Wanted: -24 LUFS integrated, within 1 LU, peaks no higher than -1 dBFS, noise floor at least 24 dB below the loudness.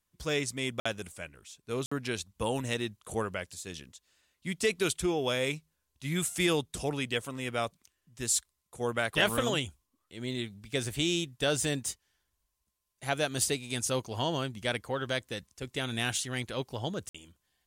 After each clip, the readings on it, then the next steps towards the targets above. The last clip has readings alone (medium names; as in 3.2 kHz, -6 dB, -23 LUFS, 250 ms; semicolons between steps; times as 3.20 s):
dropouts 3; longest dropout 55 ms; loudness -32.0 LUFS; peak level -13.0 dBFS; loudness target -24.0 LUFS
-> interpolate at 0.80/1.86/17.09 s, 55 ms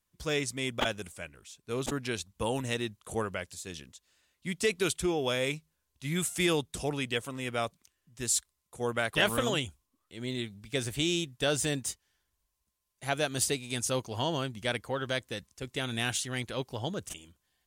dropouts 0; loudness -32.0 LUFS; peak level -13.0 dBFS; loudness target -24.0 LUFS
-> trim +8 dB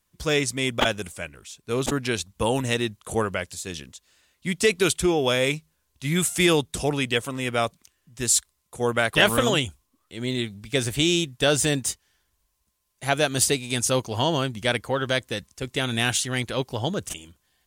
loudness -24.0 LUFS; peak level -5.0 dBFS; noise floor -73 dBFS